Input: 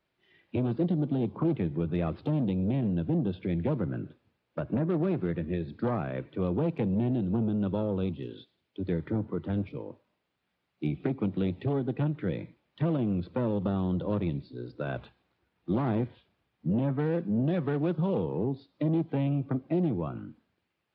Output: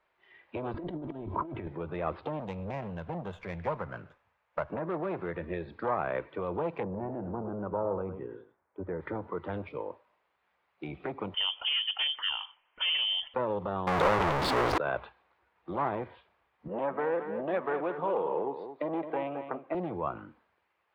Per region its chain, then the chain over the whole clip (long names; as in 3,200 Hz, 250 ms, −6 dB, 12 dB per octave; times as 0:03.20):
0:00.74–0:01.67: bass and treble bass +13 dB, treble −6 dB + comb filter 3.1 ms, depth 62% + compressor whose output falls as the input rises −27 dBFS, ratio −0.5
0:02.40–0:04.71: parametric band 330 Hz −12.5 dB 1 octave + windowed peak hold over 5 samples
0:06.83–0:09.01: low-pass filter 1,600 Hz 24 dB per octave + single-tap delay 106 ms −11.5 dB
0:11.34–0:13.34: high-pass filter 160 Hz 6 dB per octave + voice inversion scrambler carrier 3,300 Hz
0:13.87–0:14.78: converter with a step at zero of −39.5 dBFS + leveller curve on the samples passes 5 + highs frequency-modulated by the lows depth 0.19 ms
0:16.68–0:19.75: band-pass filter 290–3,000 Hz + single-tap delay 217 ms −10 dB
whole clip: low-pass filter 3,000 Hz 6 dB per octave; brickwall limiter −24.5 dBFS; octave-band graphic EQ 125/250/500/1,000/2,000 Hz −9/−8/+4/+10/+6 dB